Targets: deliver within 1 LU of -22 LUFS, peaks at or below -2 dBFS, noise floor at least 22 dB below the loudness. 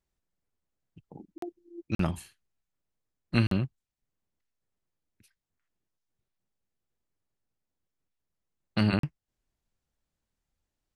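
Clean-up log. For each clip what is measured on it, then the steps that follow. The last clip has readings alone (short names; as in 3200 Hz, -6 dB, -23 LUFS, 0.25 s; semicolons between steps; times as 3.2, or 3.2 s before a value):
dropouts 4; longest dropout 43 ms; loudness -30.0 LUFS; peak -10.5 dBFS; loudness target -22.0 LUFS
-> interpolate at 1.38/1.95/3.47/8.99, 43 ms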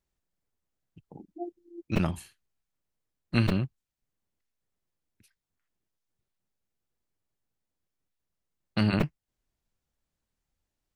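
dropouts 0; loudness -30.0 LUFS; peak -10.5 dBFS; loudness target -22.0 LUFS
-> gain +8 dB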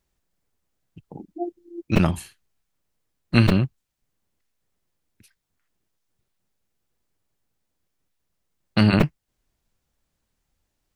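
loudness -22.0 LUFS; peak -2.5 dBFS; noise floor -78 dBFS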